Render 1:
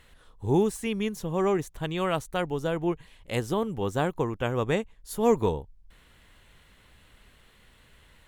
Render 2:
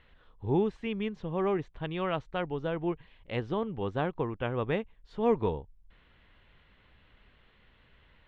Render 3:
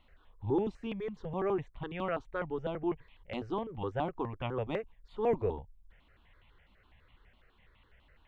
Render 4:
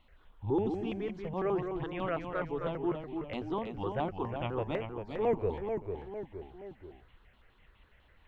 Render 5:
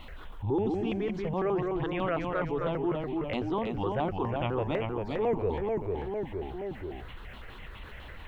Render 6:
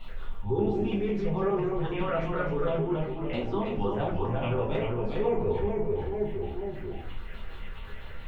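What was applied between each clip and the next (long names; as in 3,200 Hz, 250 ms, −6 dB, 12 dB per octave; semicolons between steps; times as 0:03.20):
low-pass filter 3,500 Hz 24 dB per octave; level −4 dB
step-sequenced phaser 12 Hz 450–1,600 Hz
delay with pitch and tempo change per echo 123 ms, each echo −1 semitone, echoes 3, each echo −6 dB
envelope flattener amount 50%
rectangular room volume 33 cubic metres, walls mixed, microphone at 1.1 metres; level −7 dB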